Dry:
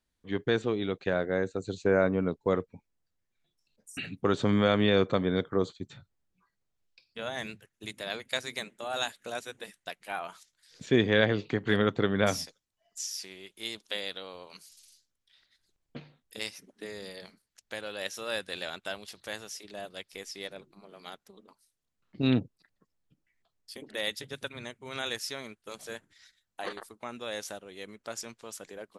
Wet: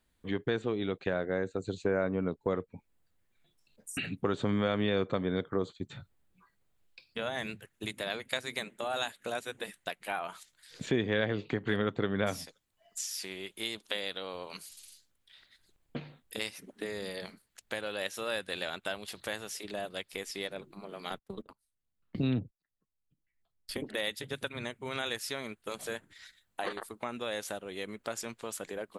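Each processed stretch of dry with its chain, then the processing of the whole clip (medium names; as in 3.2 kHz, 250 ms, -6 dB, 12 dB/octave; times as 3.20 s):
21.10–23.87 s: gate -56 dBFS, range -27 dB + bass shelf 150 Hz +9.5 dB + three bands compressed up and down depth 40%
whole clip: peaking EQ 5.6 kHz -7.5 dB 0.59 oct; compression 2:1, threshold -44 dBFS; trim +7.5 dB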